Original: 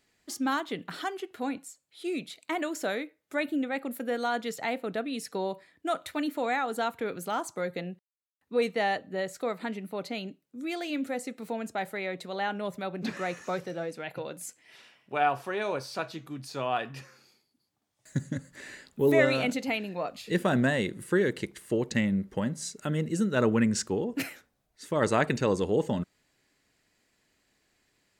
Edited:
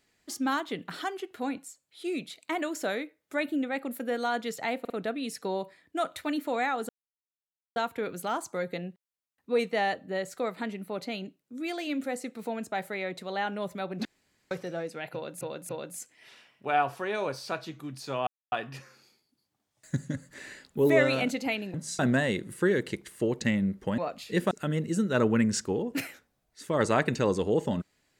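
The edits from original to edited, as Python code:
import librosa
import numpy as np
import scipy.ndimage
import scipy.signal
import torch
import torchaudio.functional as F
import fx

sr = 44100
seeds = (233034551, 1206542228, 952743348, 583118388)

y = fx.edit(x, sr, fx.stutter(start_s=4.8, slice_s=0.05, count=3),
    fx.insert_silence(at_s=6.79, length_s=0.87),
    fx.room_tone_fill(start_s=13.08, length_s=0.46),
    fx.repeat(start_s=14.16, length_s=0.28, count=3),
    fx.insert_silence(at_s=16.74, length_s=0.25),
    fx.swap(start_s=19.96, length_s=0.53, other_s=22.48, other_length_s=0.25), tone=tone)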